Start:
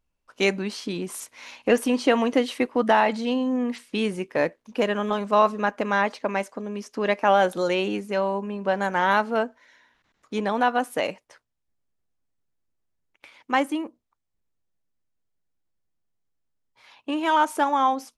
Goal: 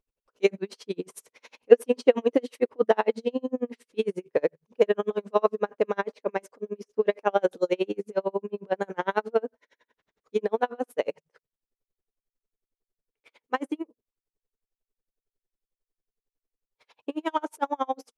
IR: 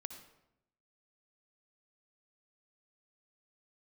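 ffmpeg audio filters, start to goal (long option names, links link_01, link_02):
-af "equalizer=frequency=440:width=2:gain=14,bandreject=frequency=52.34:width_type=h:width=4,bandreject=frequency=104.68:width_type=h:width=4,bandreject=frequency=157.02:width_type=h:width=4,aeval=exprs='val(0)*pow(10,-39*(0.5-0.5*cos(2*PI*11*n/s))/20)':channel_layout=same,volume=-3.5dB"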